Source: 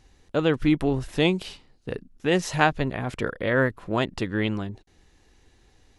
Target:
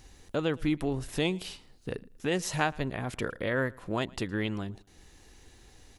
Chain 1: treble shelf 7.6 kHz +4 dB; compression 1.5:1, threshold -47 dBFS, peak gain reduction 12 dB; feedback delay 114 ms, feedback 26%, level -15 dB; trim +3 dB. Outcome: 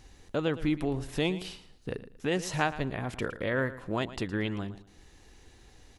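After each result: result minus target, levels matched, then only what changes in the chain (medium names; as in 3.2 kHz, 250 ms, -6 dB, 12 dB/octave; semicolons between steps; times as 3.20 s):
echo-to-direct +9.5 dB; 8 kHz band -3.0 dB
change: feedback delay 114 ms, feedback 26%, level -24.5 dB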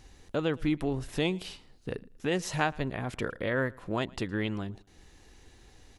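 8 kHz band -3.0 dB
change: treble shelf 7.6 kHz +11 dB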